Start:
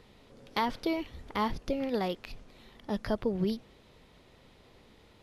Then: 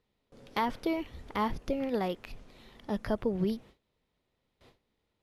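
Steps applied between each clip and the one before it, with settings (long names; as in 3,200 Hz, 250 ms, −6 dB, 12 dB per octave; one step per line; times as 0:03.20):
noise gate with hold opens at −46 dBFS
dynamic equaliser 4,400 Hz, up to −6 dB, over −55 dBFS, Q 1.4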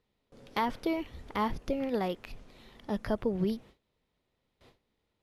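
no processing that can be heard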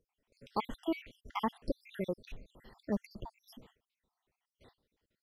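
time-frequency cells dropped at random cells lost 70%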